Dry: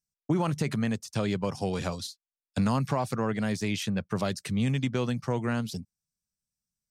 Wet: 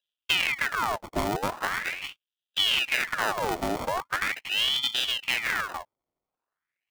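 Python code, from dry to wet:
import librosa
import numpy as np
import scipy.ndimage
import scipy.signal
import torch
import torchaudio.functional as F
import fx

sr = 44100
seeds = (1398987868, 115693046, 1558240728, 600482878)

y = fx.sample_hold(x, sr, seeds[0], rate_hz=1100.0, jitter_pct=0)
y = fx.ring_lfo(y, sr, carrier_hz=1900.0, swing_pct=75, hz=0.41)
y = y * librosa.db_to_amplitude(3.5)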